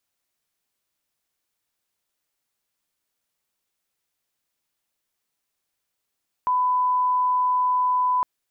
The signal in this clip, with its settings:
line-up tone −18 dBFS 1.76 s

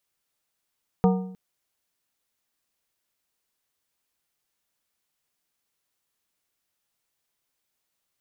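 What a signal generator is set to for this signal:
struck metal plate, length 0.31 s, lowest mode 186 Hz, modes 5, decay 0.70 s, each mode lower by 4.5 dB, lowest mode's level −14.5 dB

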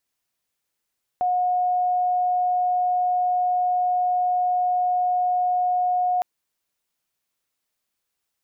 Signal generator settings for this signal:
tone sine 724 Hz −18.5 dBFS 5.01 s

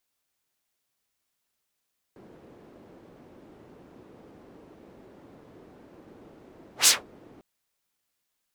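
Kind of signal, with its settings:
pass-by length 5.25 s, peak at 0:04.71, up 0.12 s, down 0.18 s, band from 340 Hz, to 7,200 Hz, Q 1.2, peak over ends 36 dB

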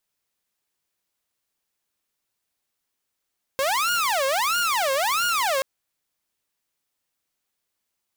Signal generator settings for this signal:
siren wail 533–1,430 Hz 1.5 per second saw −18 dBFS 2.03 s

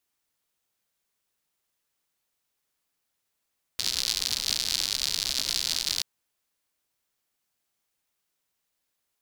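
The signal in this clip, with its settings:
rain-like ticks over hiss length 2.23 s, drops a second 110, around 4,400 Hz, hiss −17 dB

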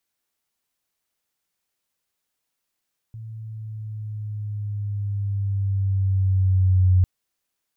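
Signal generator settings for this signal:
pitch glide with a swell sine, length 3.90 s, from 112 Hz, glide −3.5 semitones, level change +21 dB, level −12.5 dB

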